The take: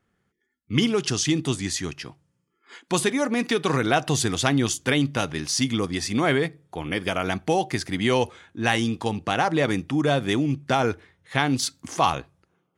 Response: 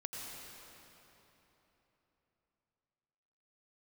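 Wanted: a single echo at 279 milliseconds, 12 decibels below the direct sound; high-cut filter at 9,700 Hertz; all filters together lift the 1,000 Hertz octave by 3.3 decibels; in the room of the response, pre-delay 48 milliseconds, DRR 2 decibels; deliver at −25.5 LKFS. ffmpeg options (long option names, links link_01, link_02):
-filter_complex "[0:a]lowpass=9700,equalizer=frequency=1000:width_type=o:gain=4.5,aecho=1:1:279:0.251,asplit=2[link_01][link_02];[1:a]atrim=start_sample=2205,adelay=48[link_03];[link_02][link_03]afir=irnorm=-1:irlink=0,volume=-2dB[link_04];[link_01][link_04]amix=inputs=2:normalize=0,volume=-4.5dB"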